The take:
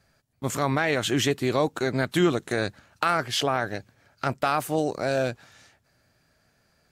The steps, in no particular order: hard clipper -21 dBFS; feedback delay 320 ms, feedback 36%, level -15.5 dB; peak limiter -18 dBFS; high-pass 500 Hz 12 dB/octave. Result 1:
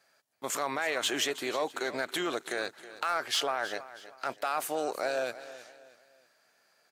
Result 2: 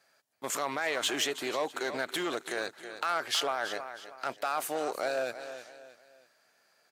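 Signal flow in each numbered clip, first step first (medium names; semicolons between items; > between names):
peak limiter > high-pass > hard clipper > feedback delay; feedback delay > peak limiter > hard clipper > high-pass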